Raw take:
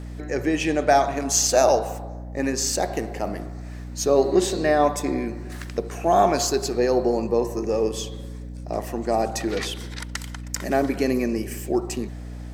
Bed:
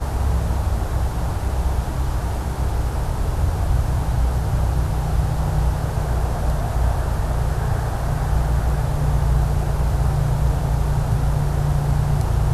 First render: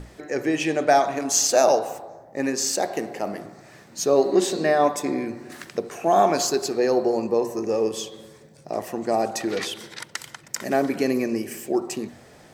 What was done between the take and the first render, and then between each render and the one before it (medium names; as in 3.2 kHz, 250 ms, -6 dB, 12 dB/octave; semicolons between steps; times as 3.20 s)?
hum notches 60/120/180/240/300 Hz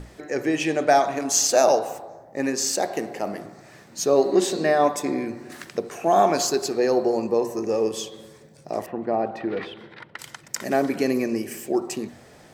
8.86–10.19 s: distance through air 440 m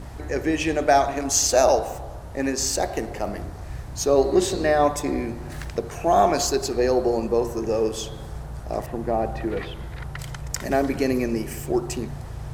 add bed -15.5 dB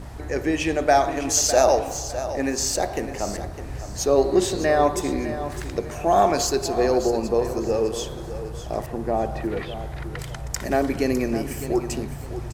feedback delay 606 ms, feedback 31%, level -12 dB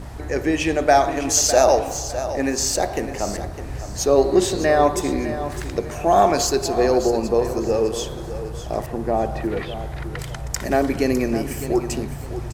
trim +2.5 dB; peak limiter -2 dBFS, peak gain reduction 1 dB